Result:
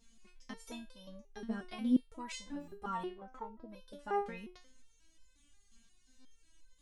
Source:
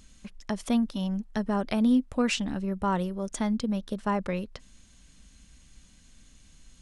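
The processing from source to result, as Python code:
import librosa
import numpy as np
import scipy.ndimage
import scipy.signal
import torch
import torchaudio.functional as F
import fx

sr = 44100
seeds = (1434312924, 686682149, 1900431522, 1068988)

y = fx.lowpass_res(x, sr, hz=fx.line((3.02, 2800.0), (3.67, 630.0)), q=4.0, at=(3.02, 3.67), fade=0.02)
y = fx.buffer_glitch(y, sr, at_s=(2.59, 6.18), block=512, repeats=10)
y = fx.resonator_held(y, sr, hz=5.6, low_hz=230.0, high_hz=510.0)
y = y * librosa.db_to_amplitude(3.0)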